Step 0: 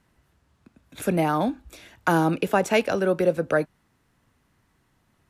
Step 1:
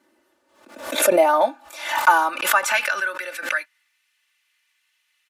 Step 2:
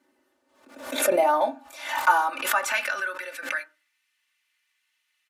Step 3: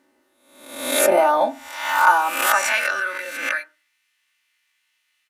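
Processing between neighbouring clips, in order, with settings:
comb 3.4 ms, depth 94%; high-pass sweep 350 Hz -> 2500 Hz, 0.05–4.02; backwards sustainer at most 85 dB/s
reverb RT60 0.30 s, pre-delay 4 ms, DRR 8 dB; gain -5.5 dB
spectral swells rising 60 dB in 0.76 s; gain +2.5 dB

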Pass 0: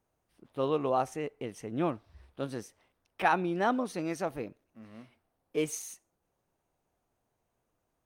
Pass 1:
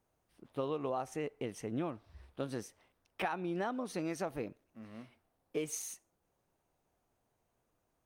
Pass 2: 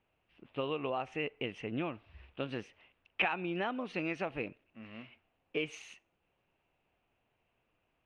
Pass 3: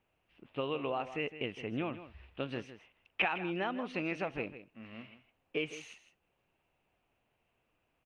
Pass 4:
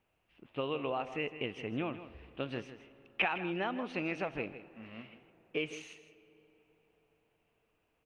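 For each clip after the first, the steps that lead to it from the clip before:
compressor 16:1, threshold -32 dBFS, peak gain reduction 12.5 dB
synth low-pass 2700 Hz, resonance Q 5.2
echo 0.159 s -13 dB
reverb RT60 4.6 s, pre-delay 10 ms, DRR 18.5 dB

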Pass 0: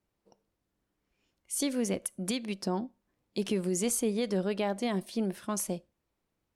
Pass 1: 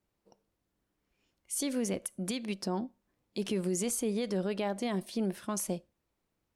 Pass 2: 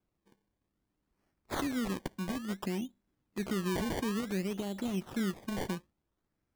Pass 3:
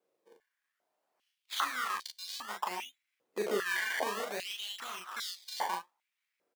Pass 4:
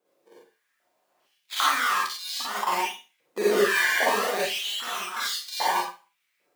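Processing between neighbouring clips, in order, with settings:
limiter -23.5 dBFS, peak gain reduction 4.5 dB
band shelf 1100 Hz -10 dB 2.7 oct; decimation with a swept rate 23×, swing 100% 0.58 Hz
early reflections 28 ms -9 dB, 39 ms -3 dB; stepped high-pass 2.5 Hz 480–4200 Hz
reverb RT60 0.30 s, pre-delay 42 ms, DRR -5.5 dB; gain +4.5 dB

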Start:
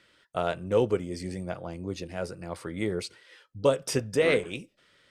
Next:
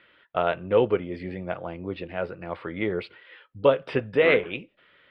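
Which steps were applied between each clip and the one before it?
inverse Chebyshev low-pass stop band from 6000 Hz, stop band 40 dB; low shelf 310 Hz -8 dB; gain +6 dB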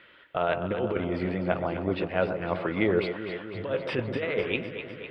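negative-ratio compressor -26 dBFS, ratio -1; echo with dull and thin repeats by turns 0.126 s, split 1200 Hz, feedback 81%, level -7.5 dB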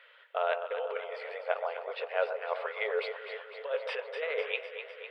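brick-wall FIR high-pass 420 Hz; gain -3 dB

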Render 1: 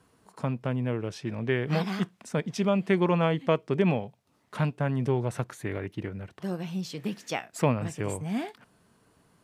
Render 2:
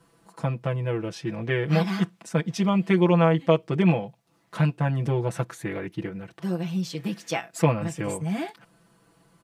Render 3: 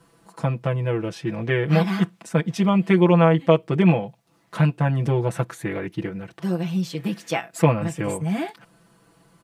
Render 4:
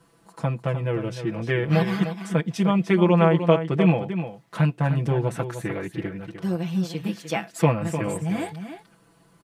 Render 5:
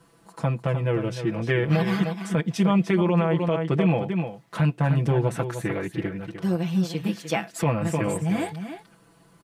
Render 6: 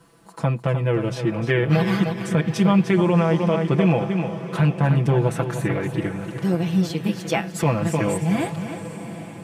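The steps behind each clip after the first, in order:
comb 6 ms, depth 99%
dynamic EQ 5500 Hz, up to -5 dB, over -49 dBFS, Q 1.3; gain +3.5 dB
echo 0.303 s -9.5 dB; gain -2 dB
limiter -13.5 dBFS, peak gain reduction 11 dB; gain +1.5 dB
diffused feedback echo 0.776 s, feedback 49%, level -12.5 dB; gain +3 dB

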